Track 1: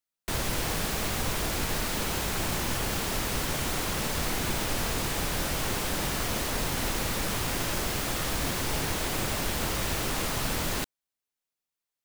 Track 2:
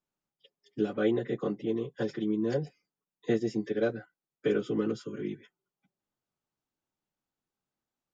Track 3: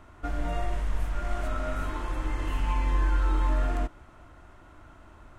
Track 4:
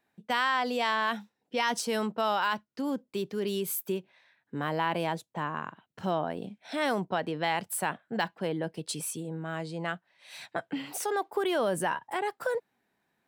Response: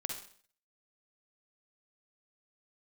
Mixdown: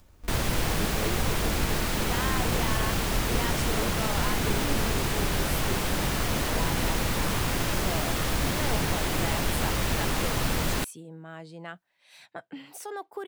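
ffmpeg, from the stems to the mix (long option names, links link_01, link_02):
-filter_complex "[0:a]bass=frequency=250:gain=3,treble=frequency=4000:gain=-3,volume=2dB[link_01];[1:a]acompressor=mode=upward:threshold=-33dB:ratio=2.5,volume=-8.5dB[link_02];[2:a]acompressor=threshold=-38dB:ratio=2,lowshelf=frequency=120:gain=11.5,acrusher=samples=37:mix=1:aa=0.000001,volume=-12.5dB[link_03];[3:a]adelay=1800,volume=-7dB[link_04];[link_01][link_02][link_03][link_04]amix=inputs=4:normalize=0"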